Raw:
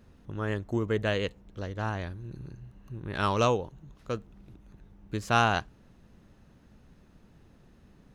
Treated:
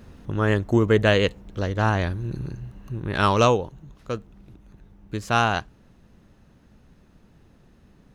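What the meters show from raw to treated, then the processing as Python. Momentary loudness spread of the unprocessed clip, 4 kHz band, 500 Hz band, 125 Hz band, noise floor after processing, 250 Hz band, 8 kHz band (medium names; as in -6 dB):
19 LU, +7.0 dB, +8.0 dB, +8.5 dB, -56 dBFS, +8.5 dB, +5.5 dB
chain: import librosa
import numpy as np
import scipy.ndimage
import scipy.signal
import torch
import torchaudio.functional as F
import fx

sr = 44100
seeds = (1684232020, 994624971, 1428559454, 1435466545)

y = fx.rider(x, sr, range_db=5, speed_s=2.0)
y = F.gain(torch.from_numpy(y), 7.5).numpy()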